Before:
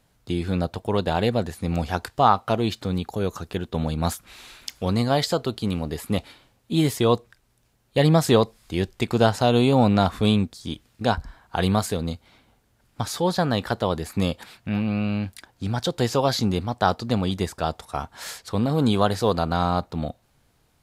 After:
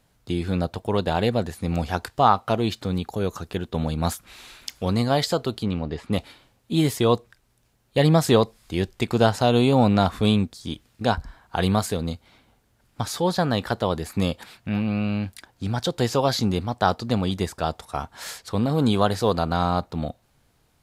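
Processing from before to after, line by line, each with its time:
0:05.63–0:06.13: high-frequency loss of the air 140 metres

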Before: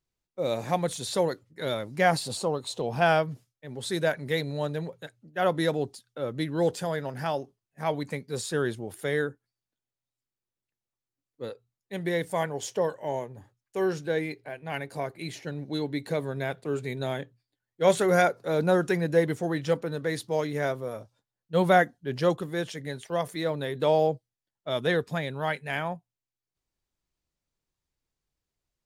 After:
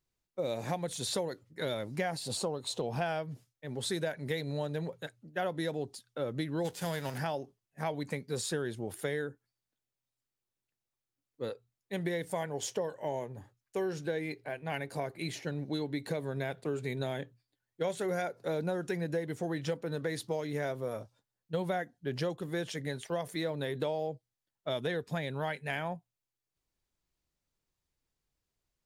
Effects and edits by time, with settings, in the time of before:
0:06.64–0:07.17: spectral envelope flattened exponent 0.6
whole clip: dynamic equaliser 1,200 Hz, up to −5 dB, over −44 dBFS, Q 3.4; downward compressor 10 to 1, threshold −30 dBFS

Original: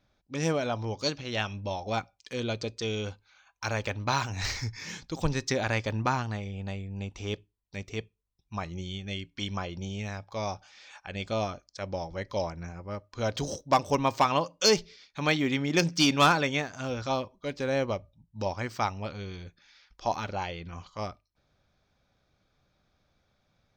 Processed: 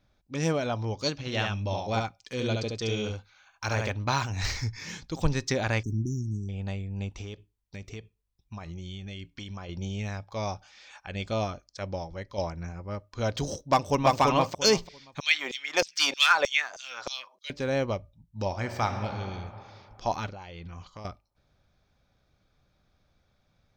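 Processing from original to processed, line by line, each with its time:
0:01.13–0:03.92: single-tap delay 71 ms −3.5 dB
0:05.83–0:06.49: linear-phase brick-wall band-stop 410–5,400 Hz
0:07.21–0:09.69: downward compressor, threshold −37 dBFS
0:11.85–0:12.38: fade out, to −7 dB
0:13.68–0:14.20: delay throw 340 ms, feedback 20%, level −1 dB
0:15.20–0:17.50: auto-filter high-pass saw down 3.2 Hz 490–5,800 Hz
0:18.46–0:19.19: thrown reverb, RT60 2.7 s, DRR 5.5 dB
0:20.28–0:21.05: downward compressor 16 to 1, threshold −39 dBFS
whole clip: low-shelf EQ 110 Hz +6 dB

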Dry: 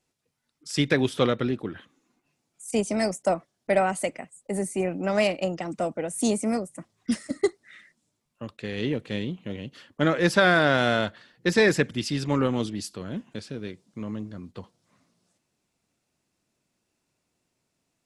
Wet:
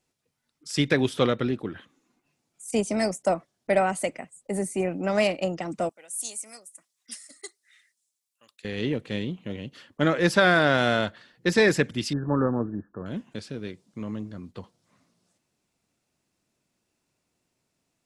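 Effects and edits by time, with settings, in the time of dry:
0:05.89–0:08.65: first difference
0:12.13–0:13.06: linear-phase brick-wall low-pass 1,800 Hz

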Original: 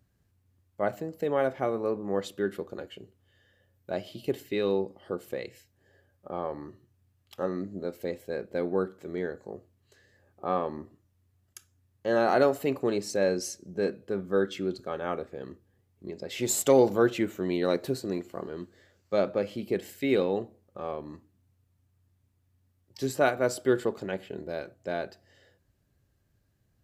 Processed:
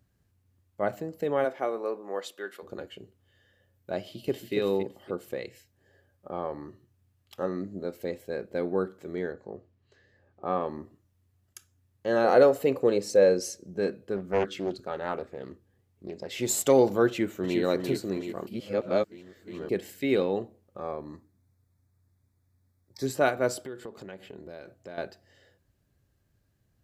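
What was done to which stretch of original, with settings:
0:01.44–0:02.62: high-pass filter 280 Hz → 790 Hz
0:03.99–0:04.54: delay throw 280 ms, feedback 25%, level −5 dB
0:09.32–0:10.61: high-frequency loss of the air 130 metres
0:12.24–0:13.66: parametric band 500 Hz +12.5 dB 0.26 octaves
0:14.16–0:16.34: highs frequency-modulated by the lows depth 0.49 ms
0:17.07–0:17.60: delay throw 360 ms, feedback 55%, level −4.5 dB
0:18.47–0:19.69: reverse
0:20.79–0:23.06: Butterworth band-reject 2,900 Hz, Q 2.6
0:23.66–0:24.98: downward compressor 3 to 1, threshold −41 dBFS

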